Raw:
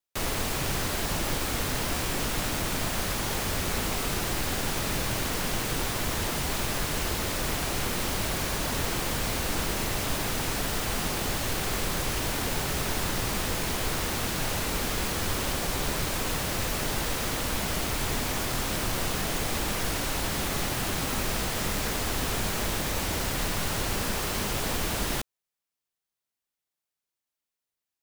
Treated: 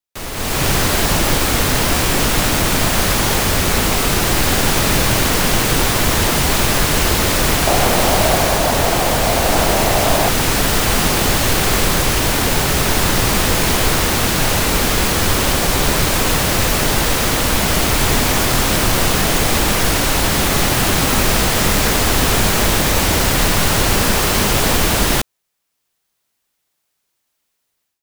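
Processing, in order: 7.67–10.29 s: peaking EQ 680 Hz +10 dB 0.72 oct; level rider gain up to 16.5 dB

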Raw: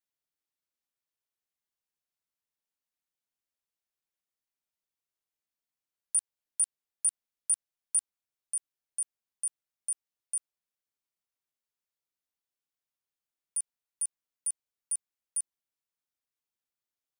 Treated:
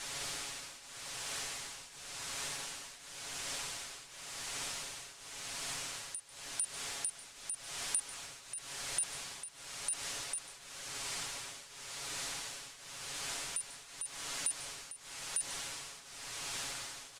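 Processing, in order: jump at every zero crossing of -35.5 dBFS; low-pass 9.2 kHz 24 dB/octave; peaking EQ 260 Hz -4.5 dB 1.8 oct; comb 7.2 ms, depth 57%; compression 5:1, threshold -39 dBFS, peak gain reduction 11 dB; tremolo triangle 0.92 Hz, depth 85%; delay 144 ms -18.5 dB; short-mantissa float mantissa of 4-bit; trim +7.5 dB

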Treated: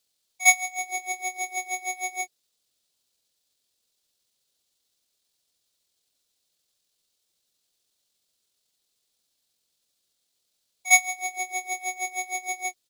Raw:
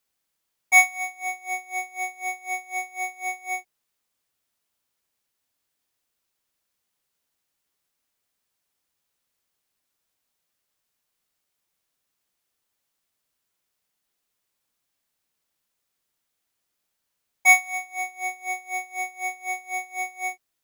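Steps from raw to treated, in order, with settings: graphic EQ 500/1000/2000/4000/8000 Hz +4/-5/-5/+10/+5 dB; tempo 1.6×; pre-echo 53 ms -19 dB

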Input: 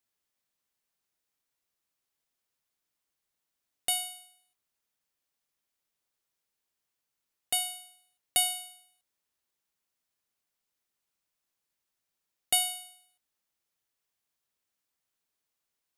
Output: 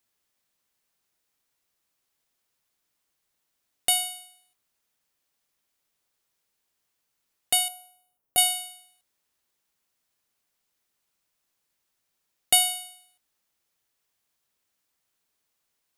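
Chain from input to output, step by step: 7.68–8.38 s: graphic EQ 2/4/8 kHz -9/-11/-10 dB; trim +6.5 dB

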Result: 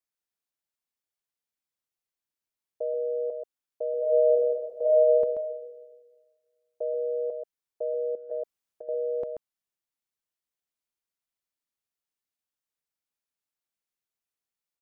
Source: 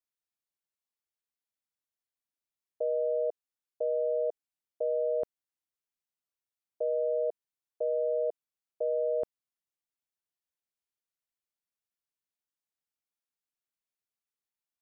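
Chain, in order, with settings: delay 133 ms -6 dB; 3.97–5.12 s: reverb throw, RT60 1.5 s, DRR -6.5 dB; 8.15–8.89 s: compressor with a negative ratio -35 dBFS, ratio -0.5

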